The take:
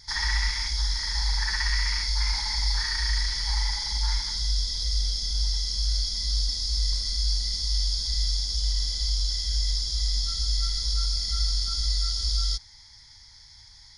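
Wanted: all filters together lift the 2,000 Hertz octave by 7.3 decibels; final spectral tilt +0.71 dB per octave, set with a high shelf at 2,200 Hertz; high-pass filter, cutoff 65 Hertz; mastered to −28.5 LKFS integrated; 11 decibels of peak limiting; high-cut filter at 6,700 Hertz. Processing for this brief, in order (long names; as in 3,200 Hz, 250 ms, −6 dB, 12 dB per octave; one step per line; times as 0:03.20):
high-pass filter 65 Hz
low-pass filter 6,700 Hz
parametric band 2,000 Hz +5.5 dB
high-shelf EQ 2,200 Hz +5 dB
level −0.5 dB
brickwall limiter −22 dBFS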